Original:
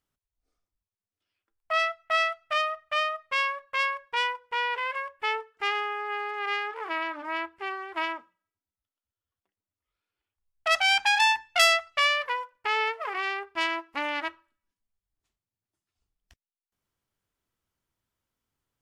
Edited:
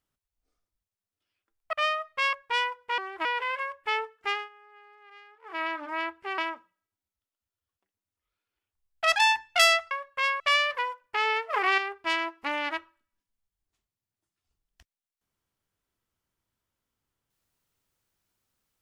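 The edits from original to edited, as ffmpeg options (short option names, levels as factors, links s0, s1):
-filter_complex "[0:a]asplit=13[s0][s1][s2][s3][s4][s5][s6][s7][s8][s9][s10][s11][s12];[s0]atrim=end=1.732[s13];[s1]atrim=start=2.868:end=3.472[s14];[s2]atrim=start=3.958:end=4.612[s15];[s3]atrim=start=7.738:end=8.012[s16];[s4]atrim=start=4.608:end=5.85,asetpts=PTS-STARTPTS,afade=t=out:st=1.032:d=0.21:silence=0.0794328[s17];[s5]atrim=start=5.85:end=6.78,asetpts=PTS-STARTPTS,volume=0.0794[s18];[s6]atrim=start=6.78:end=7.742,asetpts=PTS-STARTPTS,afade=t=in:d=0.21:silence=0.0794328[s19];[s7]atrim=start=8.008:end=10.792[s20];[s8]atrim=start=11.158:end=11.912[s21];[s9]atrim=start=3.468:end=3.962[s22];[s10]atrim=start=11.908:end=13.042[s23];[s11]atrim=start=13.038:end=13.292,asetpts=PTS-STARTPTS,volume=2.11[s24];[s12]atrim=start=13.288[s25];[s13][s14]acrossfade=d=0.004:c1=hsin:c2=hsin[s26];[s26][s15]acrossfade=d=0.004:c1=hsin:c2=hsin[s27];[s27][s16]acrossfade=d=0.004:c1=hsin:c2=hsin[s28];[s17][s18][s19]concat=n=3:v=0:a=1[s29];[s28][s29]acrossfade=d=0.004:c1=hsin:c2=hsin[s30];[s30][s20]acrossfade=d=0.004:c1=hsin:c2=hsin[s31];[s31][s21]acrossfade=d=0.004:c1=hsin:c2=hsin[s32];[s32][s22]acrossfade=d=0.004:c1=hsin:c2=hsin[s33];[s33][s23]acrossfade=d=0.004:c1=hsin:c2=hsin[s34];[s34][s24]acrossfade=d=0.004:c1=hsin:c2=hsin[s35];[s35][s25]acrossfade=d=0.004:c1=hsin:c2=hsin"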